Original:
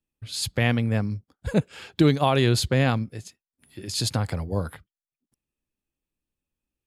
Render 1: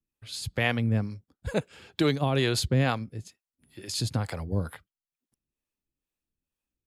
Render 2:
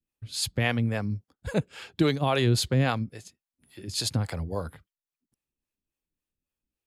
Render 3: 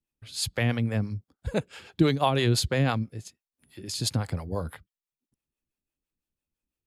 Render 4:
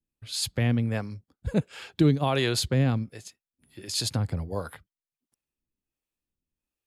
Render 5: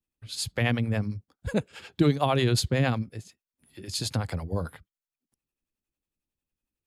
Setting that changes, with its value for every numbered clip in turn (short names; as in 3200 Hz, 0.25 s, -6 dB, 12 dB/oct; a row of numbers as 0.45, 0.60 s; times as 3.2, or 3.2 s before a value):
harmonic tremolo, rate: 2.2, 3.6, 6, 1.4, 11 Hz